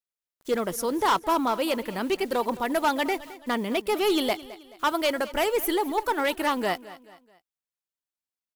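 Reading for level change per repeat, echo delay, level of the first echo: -7.5 dB, 215 ms, -17.5 dB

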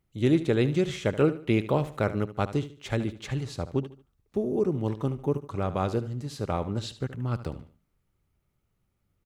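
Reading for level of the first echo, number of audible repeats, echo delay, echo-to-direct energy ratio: -14.0 dB, 3, 74 ms, -13.5 dB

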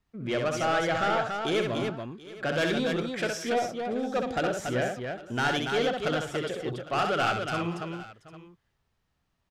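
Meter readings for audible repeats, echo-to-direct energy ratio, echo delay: 5, -1.5 dB, 65 ms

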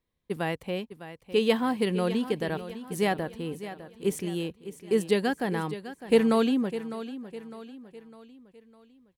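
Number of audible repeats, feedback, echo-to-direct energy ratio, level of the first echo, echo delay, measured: 4, 45%, -12.0 dB, -13.0 dB, 605 ms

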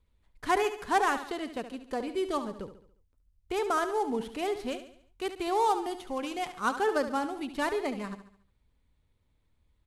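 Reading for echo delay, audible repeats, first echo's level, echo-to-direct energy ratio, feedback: 71 ms, 4, -11.0 dB, -10.0 dB, 46%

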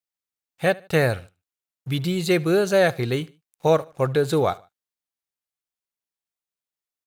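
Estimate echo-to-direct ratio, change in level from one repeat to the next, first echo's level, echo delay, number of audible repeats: -22.5 dB, -9.0 dB, -23.0 dB, 75 ms, 2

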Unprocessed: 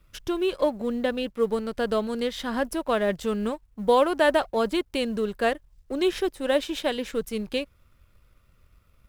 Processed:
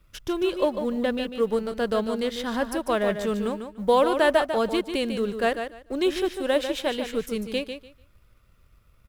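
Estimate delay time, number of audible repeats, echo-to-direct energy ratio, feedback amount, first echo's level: 147 ms, 2, -8.0 dB, 19%, -8.0 dB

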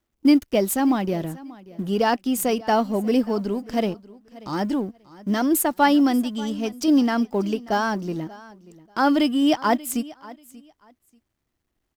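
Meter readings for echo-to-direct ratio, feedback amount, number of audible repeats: -20.0 dB, 20%, 2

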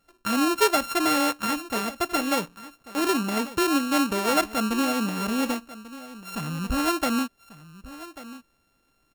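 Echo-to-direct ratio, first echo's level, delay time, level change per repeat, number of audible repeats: -16.5 dB, -16.5 dB, 1141 ms, no regular repeats, 1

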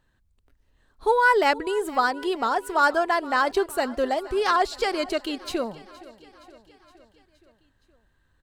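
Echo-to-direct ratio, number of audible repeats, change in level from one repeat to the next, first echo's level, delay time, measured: -18.0 dB, 4, -4.5 dB, -20.0 dB, 468 ms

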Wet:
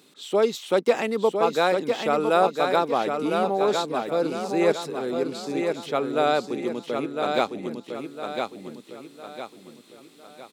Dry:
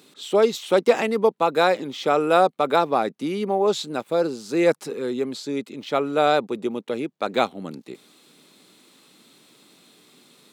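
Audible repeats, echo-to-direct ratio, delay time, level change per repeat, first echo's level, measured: 4, -4.0 dB, 1006 ms, -8.0 dB, -5.0 dB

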